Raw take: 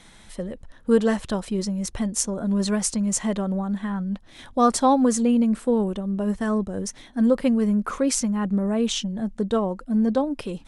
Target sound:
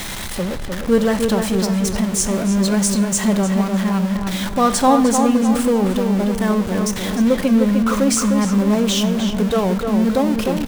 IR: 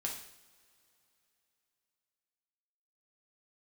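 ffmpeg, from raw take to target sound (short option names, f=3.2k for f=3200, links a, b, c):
-filter_complex "[0:a]aeval=exprs='val(0)+0.5*0.0596*sgn(val(0))':c=same,asplit=2[a][b];[b]adelay=304,lowpass=f=3.1k:p=1,volume=-5dB,asplit=2[c][d];[d]adelay=304,lowpass=f=3.1k:p=1,volume=0.47,asplit=2[e][f];[f]adelay=304,lowpass=f=3.1k:p=1,volume=0.47,asplit=2[g][h];[h]adelay=304,lowpass=f=3.1k:p=1,volume=0.47,asplit=2[i][j];[j]adelay=304,lowpass=f=3.1k:p=1,volume=0.47,asplit=2[k][l];[l]adelay=304,lowpass=f=3.1k:p=1,volume=0.47[m];[a][c][e][g][i][k][m]amix=inputs=7:normalize=0,asplit=2[n][o];[1:a]atrim=start_sample=2205[p];[o][p]afir=irnorm=-1:irlink=0,volume=-8.5dB[q];[n][q]amix=inputs=2:normalize=0"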